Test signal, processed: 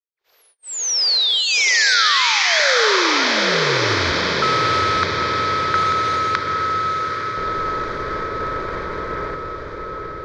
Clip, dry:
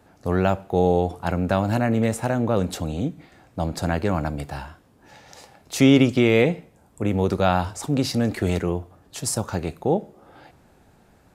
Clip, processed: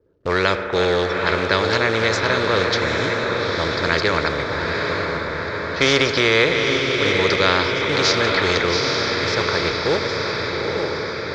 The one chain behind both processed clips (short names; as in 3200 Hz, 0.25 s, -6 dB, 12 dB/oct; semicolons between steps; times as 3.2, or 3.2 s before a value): reverse delay 0.648 s, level -11 dB; low-pass opened by the level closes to 340 Hz, open at -17 dBFS; bell 2600 Hz +6.5 dB 1.2 oct; fixed phaser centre 2800 Hz, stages 6; spring tank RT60 2 s, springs 36 ms, chirp 55 ms, DRR 14.5 dB; gate -47 dBFS, range -17 dB; short-mantissa float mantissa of 4-bit; LPF 5100 Hz 24 dB/oct; resonant low shelf 320 Hz -11 dB, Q 3; diffused feedback echo 0.856 s, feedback 51%, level -7 dB; spectral compressor 2:1; gain +7 dB